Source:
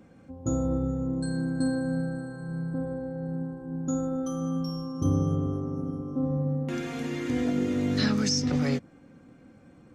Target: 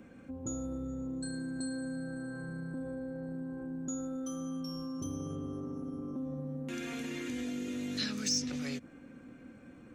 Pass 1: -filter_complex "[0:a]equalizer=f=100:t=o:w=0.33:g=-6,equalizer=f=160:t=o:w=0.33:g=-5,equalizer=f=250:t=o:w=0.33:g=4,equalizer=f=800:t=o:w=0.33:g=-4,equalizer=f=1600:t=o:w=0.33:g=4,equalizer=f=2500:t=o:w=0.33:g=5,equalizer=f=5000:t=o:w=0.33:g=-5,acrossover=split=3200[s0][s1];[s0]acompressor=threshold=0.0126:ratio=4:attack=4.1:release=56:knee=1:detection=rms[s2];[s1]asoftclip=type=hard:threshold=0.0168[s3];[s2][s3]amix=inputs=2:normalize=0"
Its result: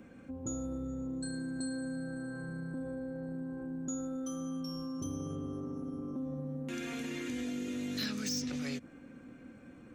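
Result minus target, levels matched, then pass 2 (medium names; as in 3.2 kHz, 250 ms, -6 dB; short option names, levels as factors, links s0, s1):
hard clipper: distortion +19 dB
-filter_complex "[0:a]equalizer=f=100:t=o:w=0.33:g=-6,equalizer=f=160:t=o:w=0.33:g=-5,equalizer=f=250:t=o:w=0.33:g=4,equalizer=f=800:t=o:w=0.33:g=-4,equalizer=f=1600:t=o:w=0.33:g=4,equalizer=f=2500:t=o:w=0.33:g=5,equalizer=f=5000:t=o:w=0.33:g=-5,acrossover=split=3200[s0][s1];[s0]acompressor=threshold=0.0126:ratio=4:attack=4.1:release=56:knee=1:detection=rms[s2];[s1]asoftclip=type=hard:threshold=0.0531[s3];[s2][s3]amix=inputs=2:normalize=0"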